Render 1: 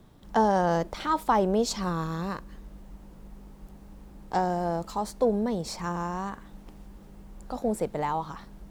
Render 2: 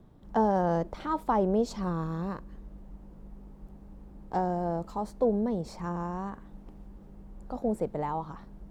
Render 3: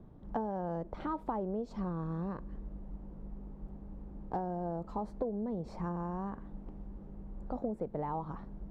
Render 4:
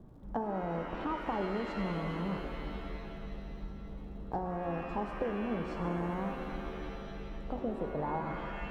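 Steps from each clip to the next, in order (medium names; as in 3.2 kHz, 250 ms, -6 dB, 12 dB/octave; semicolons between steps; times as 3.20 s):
tilt shelf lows +6.5 dB, about 1.5 kHz; trim -7 dB
low-pass 1.1 kHz 6 dB/octave; compression 10:1, threshold -34 dBFS, peak gain reduction 13.5 dB; trim +2 dB
crackle 66 per s -63 dBFS; pitch-shifted reverb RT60 2.6 s, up +7 st, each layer -2 dB, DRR 5.5 dB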